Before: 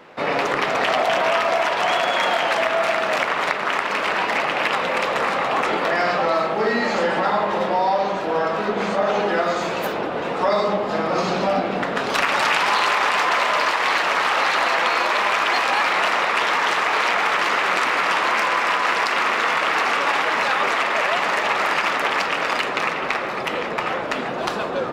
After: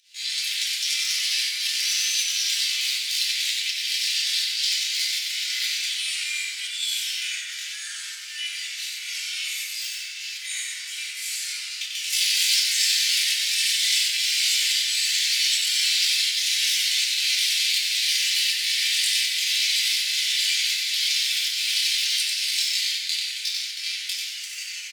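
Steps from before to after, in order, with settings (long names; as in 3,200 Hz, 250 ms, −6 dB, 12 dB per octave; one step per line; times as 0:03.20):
Bessel high-pass filter 2,400 Hz, order 8
pitch shifter +10.5 semitones
fake sidechain pumping 81 BPM, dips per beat 1, −17 dB, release 174 ms
on a send: echo with shifted repeats 93 ms, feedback 37%, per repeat −80 Hz, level −4 dB
on the sum: feedback delay network reverb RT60 0.98 s, low-frequency decay 1.4×, high-frequency decay 0.5×, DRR −4 dB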